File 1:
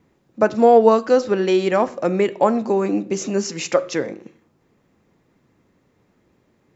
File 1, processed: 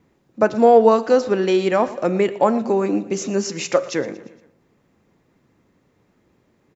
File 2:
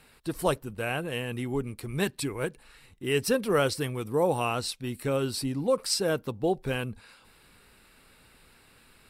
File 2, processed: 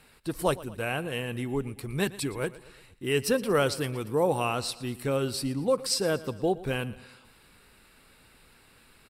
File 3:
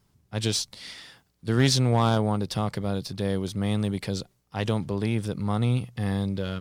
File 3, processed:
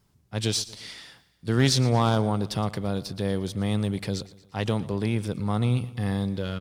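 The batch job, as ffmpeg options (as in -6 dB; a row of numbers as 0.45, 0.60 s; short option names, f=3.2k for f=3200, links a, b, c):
-af "aecho=1:1:116|232|348|464:0.119|0.0618|0.0321|0.0167"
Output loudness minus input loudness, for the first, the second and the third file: 0.0, 0.0, 0.0 LU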